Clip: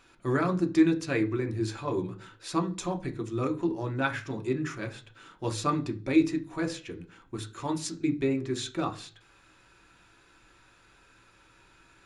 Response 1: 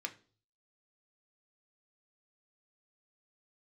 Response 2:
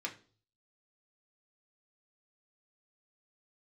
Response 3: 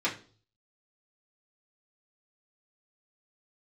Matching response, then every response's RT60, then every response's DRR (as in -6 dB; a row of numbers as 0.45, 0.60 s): 1; 0.40, 0.40, 0.40 s; 4.5, -0.5, -7.0 dB